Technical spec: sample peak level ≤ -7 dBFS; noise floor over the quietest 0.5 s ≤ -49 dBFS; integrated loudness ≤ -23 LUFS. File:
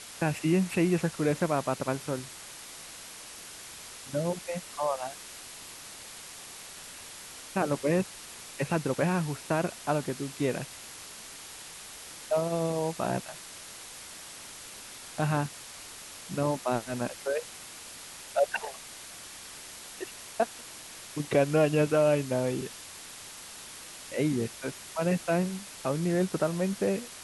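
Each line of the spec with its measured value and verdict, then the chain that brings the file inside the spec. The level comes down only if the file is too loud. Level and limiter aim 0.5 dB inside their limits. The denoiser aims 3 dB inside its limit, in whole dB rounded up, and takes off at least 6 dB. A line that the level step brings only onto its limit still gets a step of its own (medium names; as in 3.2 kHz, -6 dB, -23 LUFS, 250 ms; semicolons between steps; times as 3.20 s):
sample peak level -11.5 dBFS: pass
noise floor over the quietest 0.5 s -45 dBFS: fail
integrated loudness -30.0 LUFS: pass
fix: noise reduction 7 dB, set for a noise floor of -45 dBFS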